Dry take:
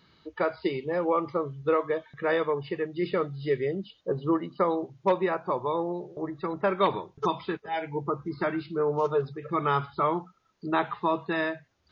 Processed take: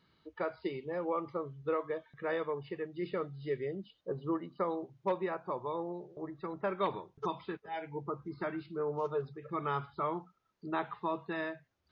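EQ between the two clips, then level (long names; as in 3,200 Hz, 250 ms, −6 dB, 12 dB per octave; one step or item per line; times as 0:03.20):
high-shelf EQ 4,100 Hz −5 dB
−8.5 dB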